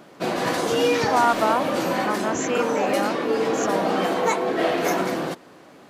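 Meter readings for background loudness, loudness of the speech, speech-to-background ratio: −23.5 LKFS, −26.5 LKFS, −3.0 dB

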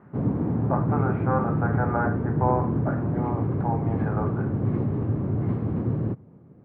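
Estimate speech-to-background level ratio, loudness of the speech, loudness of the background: −5.0 dB, −31.0 LKFS, −26.0 LKFS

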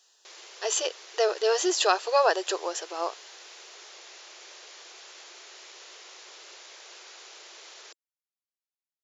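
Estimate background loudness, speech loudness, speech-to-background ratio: −45.5 LKFS, −26.5 LKFS, 19.0 dB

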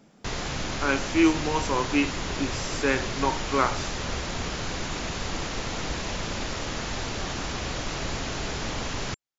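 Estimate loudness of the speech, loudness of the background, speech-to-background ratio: −27.0 LKFS, −31.5 LKFS, 4.5 dB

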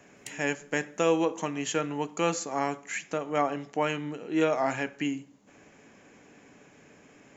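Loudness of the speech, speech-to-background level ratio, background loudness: −29.5 LKFS, 19.0 dB, −48.5 LKFS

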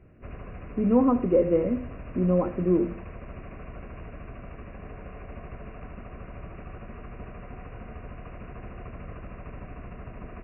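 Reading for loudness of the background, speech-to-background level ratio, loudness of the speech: −42.5 LKFS, 18.0 dB, −24.5 LKFS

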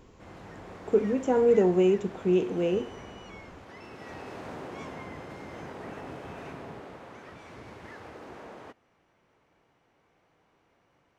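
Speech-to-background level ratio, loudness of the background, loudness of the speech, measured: 19.0 dB, −44.0 LKFS, −25.0 LKFS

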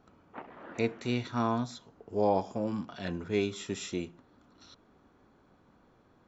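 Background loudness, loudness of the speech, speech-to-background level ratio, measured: −49.5 LKFS, −33.0 LKFS, 16.5 dB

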